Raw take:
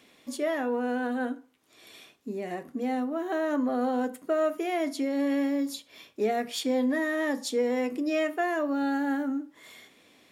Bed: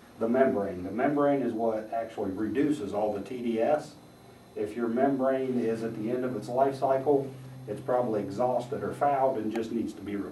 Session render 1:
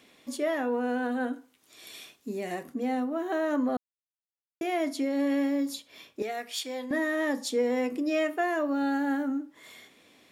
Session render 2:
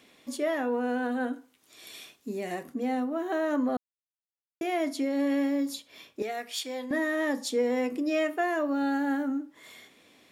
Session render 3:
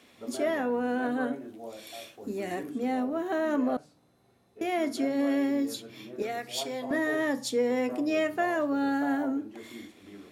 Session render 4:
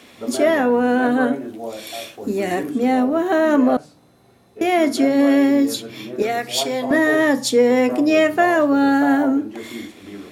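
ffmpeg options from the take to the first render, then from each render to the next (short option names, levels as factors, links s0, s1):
-filter_complex "[0:a]asettb=1/sr,asplit=3[s0][s1][s2];[s0]atrim=end=1.334[s3];[s1]atrim=start=1.33:end=2.74,asetpts=PTS-STARTPTS,afade=t=in:d=0.004:c=qsin,afade=t=out:st=1.406:d=0.004:c=qsin,highshelf=f=2900:g=8.5[s4];[s2]atrim=start=2.736[s5];[s3][s4]acrossfade=d=0.004:c1=hsin:c2=qsin[s6];[s6][s5]acrossfade=d=0.004:c1=qsin:c2=hsin,asettb=1/sr,asplit=3[s7][s8][s9];[s7]atrim=end=6.224[s10];[s8]atrim=start=6.22:end=6.91,asetpts=PTS-STARTPTS,afade=t=in:d=0.004:c=qsin,afade=t=out:st=0.686:d=0.004:c=qsin,highpass=f=1200:p=1[s11];[s9]atrim=start=6.906[s12];[s10][s11]acrossfade=d=0.004:c1=hsin:c2=qsin[s13];[s13][s12]acrossfade=d=0.004:c1=qsin:c2=hsin,asplit=3[s14][s15][s16];[s14]atrim=end=3.77,asetpts=PTS-STARTPTS,afade=t=out:st=3.766:d=0.004:c=hsin[s17];[s15]atrim=start=3.77:end=4.61,asetpts=PTS-STARTPTS,volume=0[s18];[s16]atrim=start=4.61,asetpts=PTS-STARTPTS,afade=t=in:d=0.004:c=hsin[s19];[s17][s18][s19]concat=n=3:v=0:a=1"
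-af anull
-filter_complex "[1:a]volume=0.2[s0];[0:a][s0]amix=inputs=2:normalize=0"
-af "volume=3.98"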